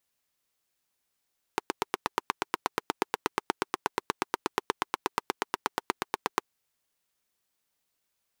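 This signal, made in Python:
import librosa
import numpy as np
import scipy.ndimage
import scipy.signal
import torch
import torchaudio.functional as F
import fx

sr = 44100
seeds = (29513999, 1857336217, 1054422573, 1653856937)

y = fx.engine_single(sr, seeds[0], length_s=4.88, rpm=1000, resonances_hz=(400.0, 920.0))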